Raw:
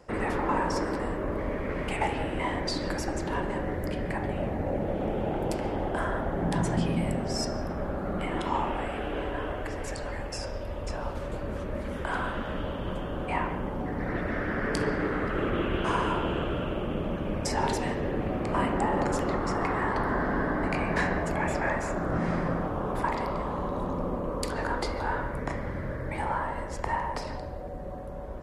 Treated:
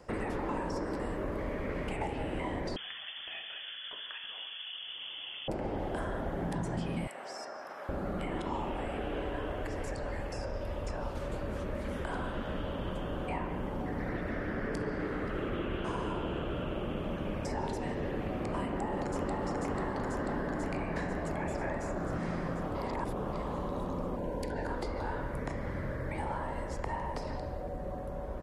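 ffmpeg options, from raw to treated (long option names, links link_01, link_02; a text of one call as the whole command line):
ffmpeg -i in.wav -filter_complex "[0:a]asettb=1/sr,asplit=3[link_01][link_02][link_03];[link_01]atrim=end=2.764[link_04];[link_02]atrim=start=2.76:end=5.48,asetpts=PTS-STARTPTS,afade=type=in:duration=0.004:curve=qsin,afade=type=out:start_time=2.716:duration=0.004:curve=qsin,lowpass=frequency=3000:width_type=q:width=0.5098,lowpass=frequency=3000:width_type=q:width=0.6013,lowpass=frequency=3000:width_type=q:width=0.9,lowpass=frequency=3000:width_type=q:width=2.563,afreqshift=-3500[link_05];[link_03]atrim=start=5.476[link_06];[link_04][link_05]acrossfade=duration=0.004:curve1=hsin:curve2=qsin[link_07];[link_07][link_06]acrossfade=duration=0.004:curve1=qsin:curve2=hsin,asettb=1/sr,asplit=3[link_08][link_09][link_10];[link_08]atrim=end=7.074[link_11];[link_09]atrim=start=7.07:end=7.89,asetpts=PTS-STARTPTS,afade=type=in:duration=0.004:curve=qsin,afade=type=out:start_time=0.816:duration=0.004:curve=qsin,highpass=960[link_12];[link_10]atrim=start=7.886[link_13];[link_11][link_12]acrossfade=duration=0.004:curve1=hsin:curve2=qsin[link_14];[link_14][link_13]acrossfade=duration=0.004:curve1=qsin:curve2=hsin,asplit=2[link_15][link_16];[link_16]afade=type=in:start_time=18.66:duration=0.01,afade=type=out:start_time=19.42:duration=0.01,aecho=0:1:490|980|1470|1960|2450|2940|3430|3920|4410|4900|5390:0.944061|0.61364|0.398866|0.259263|0.168521|0.109538|0.0712|0.04628|0.030082|0.0195533|0.0127096[link_17];[link_15][link_17]amix=inputs=2:normalize=0,asettb=1/sr,asplit=3[link_18][link_19][link_20];[link_18]atrim=end=24.164[link_21];[link_19]atrim=start=24.16:end=24.66,asetpts=PTS-STARTPTS,afade=type=in:duration=0.004:curve=qsin,afade=type=out:start_time=0.496:duration=0.004:curve=qsin,asuperstop=centerf=1200:order=20:qfactor=3.5[link_22];[link_20]atrim=start=24.656[link_23];[link_21][link_22]acrossfade=duration=0.004:curve1=hsin:curve2=qsin[link_24];[link_24][link_23]acrossfade=duration=0.004:curve1=qsin:curve2=hsin,asplit=3[link_25][link_26][link_27];[link_25]atrim=end=22.752[link_28];[link_26]atrim=start=22.748:end=23.332,asetpts=PTS-STARTPTS,areverse[link_29];[link_27]atrim=start=23.328[link_30];[link_28][link_29]acrossfade=duration=0.004:curve1=hsin:curve2=hsin[link_31];[link_31][link_30]acrossfade=duration=0.004:curve1=hsin:curve2=hsin,acrossover=split=770|2400[link_32][link_33][link_34];[link_32]acompressor=threshold=-33dB:ratio=4[link_35];[link_33]acompressor=threshold=-46dB:ratio=4[link_36];[link_34]acompressor=threshold=-52dB:ratio=4[link_37];[link_35][link_36][link_37]amix=inputs=3:normalize=0" out.wav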